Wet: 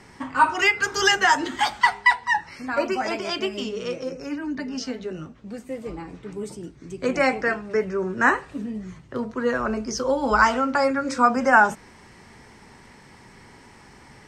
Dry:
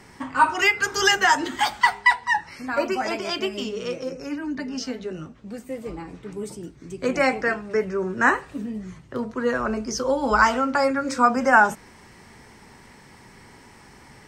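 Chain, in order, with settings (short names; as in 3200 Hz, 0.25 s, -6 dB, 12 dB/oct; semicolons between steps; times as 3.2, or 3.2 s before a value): Bessel low-pass 9300 Hz, order 2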